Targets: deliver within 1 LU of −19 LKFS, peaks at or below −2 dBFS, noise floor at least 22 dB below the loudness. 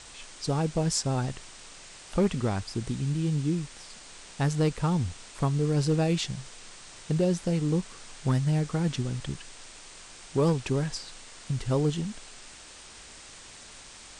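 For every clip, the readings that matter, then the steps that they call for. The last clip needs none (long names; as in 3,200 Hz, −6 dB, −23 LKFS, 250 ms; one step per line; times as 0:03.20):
share of clipped samples 0.2%; peaks flattened at −17.0 dBFS; background noise floor −48 dBFS; target noise floor −51 dBFS; integrated loudness −28.5 LKFS; sample peak −17.0 dBFS; target loudness −19.0 LKFS
→ clipped peaks rebuilt −17 dBFS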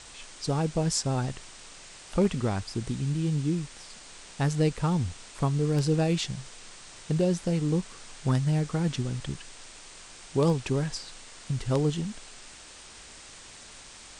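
share of clipped samples 0.0%; background noise floor −48 dBFS; target noise floor −51 dBFS
→ broadband denoise 6 dB, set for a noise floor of −48 dBFS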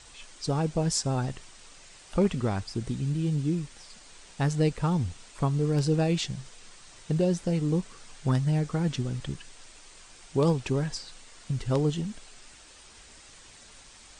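background noise floor −52 dBFS; integrated loudness −28.5 LKFS; sample peak −10.5 dBFS; target loudness −19.0 LKFS
→ level +9.5 dB
brickwall limiter −2 dBFS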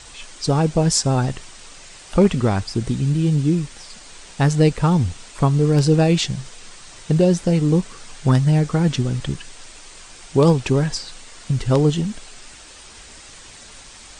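integrated loudness −19.0 LKFS; sample peak −2.0 dBFS; background noise floor −42 dBFS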